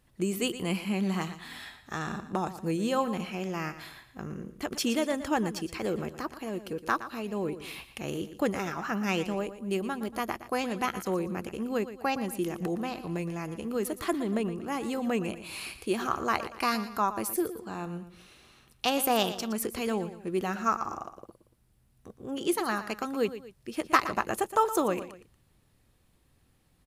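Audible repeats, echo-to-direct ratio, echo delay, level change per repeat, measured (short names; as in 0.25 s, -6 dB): 2, -12.5 dB, 0.117 s, -7.5 dB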